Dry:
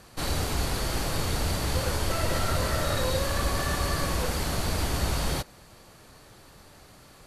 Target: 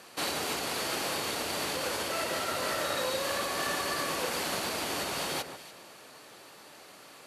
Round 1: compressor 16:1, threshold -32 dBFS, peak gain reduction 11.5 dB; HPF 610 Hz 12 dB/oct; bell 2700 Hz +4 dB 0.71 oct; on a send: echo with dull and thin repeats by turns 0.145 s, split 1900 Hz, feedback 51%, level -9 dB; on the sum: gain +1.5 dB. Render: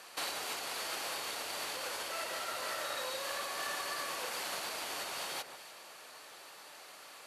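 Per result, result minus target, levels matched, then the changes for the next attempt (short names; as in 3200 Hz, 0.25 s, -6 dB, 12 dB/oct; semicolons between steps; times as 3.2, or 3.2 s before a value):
250 Hz band -9.0 dB; compressor: peak gain reduction +5.5 dB
change: HPF 300 Hz 12 dB/oct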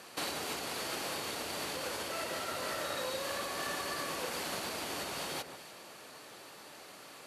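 compressor: peak gain reduction +5.5 dB
change: compressor 16:1, threshold -26 dBFS, peak gain reduction 6 dB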